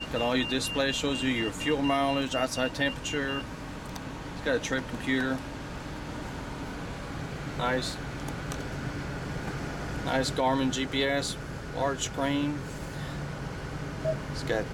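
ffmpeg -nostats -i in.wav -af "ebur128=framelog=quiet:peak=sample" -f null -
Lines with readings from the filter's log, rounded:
Integrated loudness:
  I:         -30.8 LUFS
  Threshold: -40.8 LUFS
Loudness range:
  LRA:         5.9 LU
  Threshold: -51.1 LUFS
  LRA low:   -34.3 LUFS
  LRA high:  -28.3 LUFS
Sample peak:
  Peak:      -13.1 dBFS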